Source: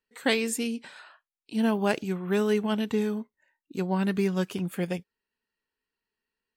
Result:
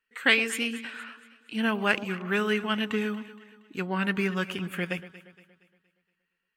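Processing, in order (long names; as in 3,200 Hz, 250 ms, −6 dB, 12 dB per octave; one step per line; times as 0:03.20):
flat-topped bell 1,900 Hz +11.5 dB
delay that swaps between a low-pass and a high-pass 117 ms, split 940 Hz, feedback 65%, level −12.5 dB
level −3.5 dB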